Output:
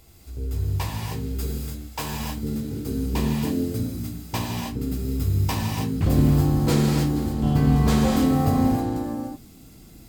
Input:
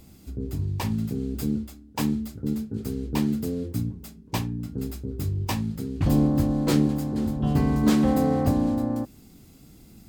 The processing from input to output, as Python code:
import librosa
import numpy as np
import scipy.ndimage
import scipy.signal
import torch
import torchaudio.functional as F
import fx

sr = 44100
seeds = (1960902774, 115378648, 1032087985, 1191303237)

y = fx.peak_eq(x, sr, hz=220.0, db=fx.steps((0.0, -14.0), (2.2, -3.0)), octaves=1.2)
y = fx.rev_gated(y, sr, seeds[0], gate_ms=340, shape='flat', drr_db=-2.5)